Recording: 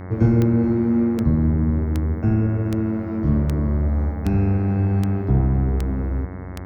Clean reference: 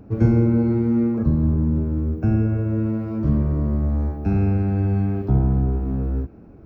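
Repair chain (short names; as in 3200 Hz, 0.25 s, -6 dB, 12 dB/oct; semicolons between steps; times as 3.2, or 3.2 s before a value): clip repair -7 dBFS; de-click; de-hum 91.6 Hz, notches 24; inverse comb 0.426 s -14.5 dB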